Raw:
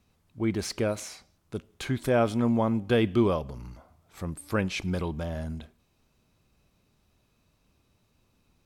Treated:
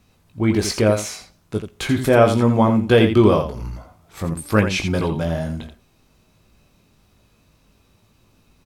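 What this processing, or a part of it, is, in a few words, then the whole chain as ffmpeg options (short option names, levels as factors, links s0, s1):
slapback doubling: -filter_complex "[0:a]asplit=3[s0][s1][s2];[s1]adelay=19,volume=0.501[s3];[s2]adelay=84,volume=0.398[s4];[s0][s3][s4]amix=inputs=3:normalize=0,volume=2.82"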